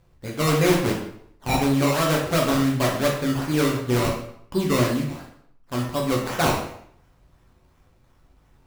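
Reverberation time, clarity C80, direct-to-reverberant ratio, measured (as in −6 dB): 0.65 s, 8.0 dB, −2.0 dB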